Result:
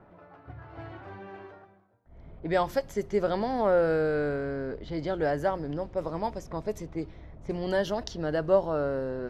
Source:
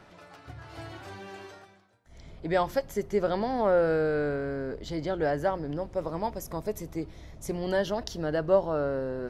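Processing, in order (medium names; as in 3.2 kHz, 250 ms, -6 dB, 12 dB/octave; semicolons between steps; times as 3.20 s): level-controlled noise filter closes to 1 kHz, open at -25.5 dBFS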